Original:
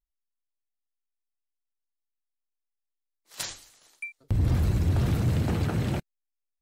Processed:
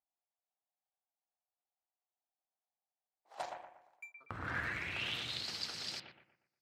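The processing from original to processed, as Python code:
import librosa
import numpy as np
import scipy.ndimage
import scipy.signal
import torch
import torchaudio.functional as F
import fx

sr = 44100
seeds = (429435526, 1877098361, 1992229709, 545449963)

y = fx.filter_sweep_bandpass(x, sr, from_hz=750.0, to_hz=4800.0, start_s=3.84, end_s=5.53, q=5.7)
y = fx.power_curve(y, sr, exponent=1.4, at=(3.42, 4.17))
y = fx.echo_bbd(y, sr, ms=119, stages=2048, feedback_pct=37, wet_db=-5.0)
y = y * librosa.db_to_amplitude(12.5)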